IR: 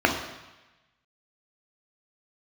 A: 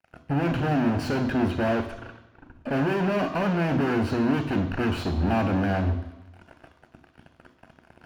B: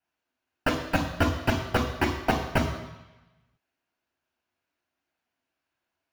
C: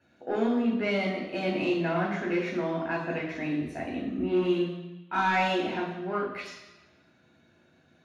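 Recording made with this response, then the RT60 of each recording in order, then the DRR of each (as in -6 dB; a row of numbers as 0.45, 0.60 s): B; 1.1, 1.1, 1.1 s; 7.0, 1.5, -3.5 dB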